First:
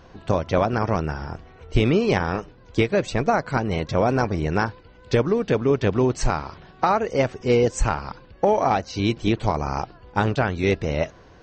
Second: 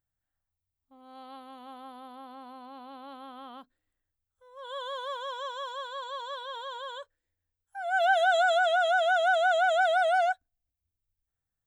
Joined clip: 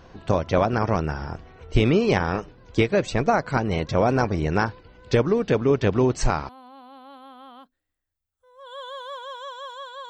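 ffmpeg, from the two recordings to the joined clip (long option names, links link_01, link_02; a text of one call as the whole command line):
ffmpeg -i cue0.wav -i cue1.wav -filter_complex "[0:a]apad=whole_dur=10.09,atrim=end=10.09,atrim=end=6.492[link_01];[1:a]atrim=start=2.468:end=6.07[link_02];[link_01][link_02]acrossfade=duration=0.004:curve1=hsin:curve2=hsin" out.wav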